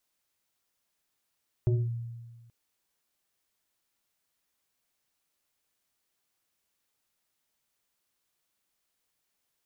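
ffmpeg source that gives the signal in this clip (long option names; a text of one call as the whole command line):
ffmpeg -f lavfi -i "aevalsrc='0.1*pow(10,-3*t/1.47)*sin(2*PI*117*t+0.78*clip(1-t/0.22,0,1)*sin(2*PI*2.12*117*t))':duration=0.83:sample_rate=44100" out.wav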